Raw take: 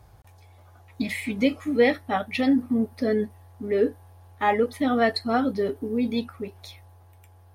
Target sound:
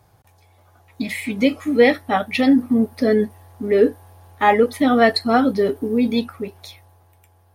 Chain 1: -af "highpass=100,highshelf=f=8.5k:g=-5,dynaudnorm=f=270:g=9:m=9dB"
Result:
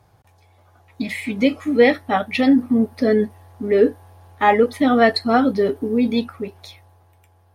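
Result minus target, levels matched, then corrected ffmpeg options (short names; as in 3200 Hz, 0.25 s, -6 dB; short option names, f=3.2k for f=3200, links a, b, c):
8000 Hz band -4.0 dB
-af "highpass=100,highshelf=f=8.5k:g=3,dynaudnorm=f=270:g=9:m=9dB"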